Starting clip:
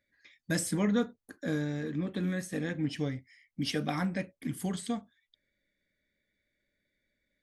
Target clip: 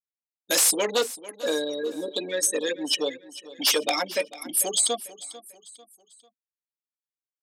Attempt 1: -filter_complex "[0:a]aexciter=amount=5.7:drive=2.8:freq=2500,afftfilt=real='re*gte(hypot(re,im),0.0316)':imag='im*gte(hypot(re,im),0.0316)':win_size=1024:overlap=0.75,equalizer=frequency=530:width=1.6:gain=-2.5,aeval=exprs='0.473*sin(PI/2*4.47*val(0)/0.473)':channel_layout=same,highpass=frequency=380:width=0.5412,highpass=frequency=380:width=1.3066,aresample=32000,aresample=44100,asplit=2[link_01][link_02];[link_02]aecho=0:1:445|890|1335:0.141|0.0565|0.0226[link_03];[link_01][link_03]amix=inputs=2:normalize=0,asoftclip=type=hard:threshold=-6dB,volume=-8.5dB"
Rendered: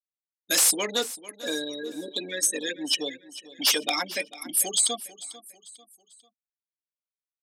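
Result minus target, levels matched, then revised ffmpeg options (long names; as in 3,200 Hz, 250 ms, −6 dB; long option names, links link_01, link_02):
500 Hz band −6.0 dB
-filter_complex "[0:a]aexciter=amount=5.7:drive=2.8:freq=2500,afftfilt=real='re*gte(hypot(re,im),0.0316)':imag='im*gte(hypot(re,im),0.0316)':win_size=1024:overlap=0.75,equalizer=frequency=530:width=1.6:gain=6.5,aeval=exprs='0.473*sin(PI/2*4.47*val(0)/0.473)':channel_layout=same,highpass=frequency=380:width=0.5412,highpass=frequency=380:width=1.3066,aresample=32000,aresample=44100,asplit=2[link_01][link_02];[link_02]aecho=0:1:445|890|1335:0.141|0.0565|0.0226[link_03];[link_01][link_03]amix=inputs=2:normalize=0,asoftclip=type=hard:threshold=-6dB,volume=-8.5dB"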